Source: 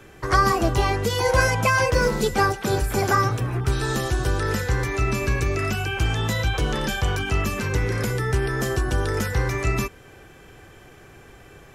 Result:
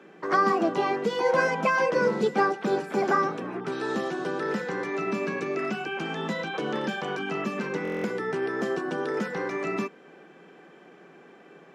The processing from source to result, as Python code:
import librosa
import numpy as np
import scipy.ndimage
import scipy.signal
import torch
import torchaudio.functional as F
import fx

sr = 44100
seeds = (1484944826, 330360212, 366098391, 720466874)

y = scipy.signal.sosfilt(scipy.signal.ellip(4, 1.0, 40, 170.0, 'highpass', fs=sr, output='sos'), x)
y = fx.spacing_loss(y, sr, db_at_10k=22)
y = fx.buffer_glitch(y, sr, at_s=(7.83,), block=1024, repeats=8)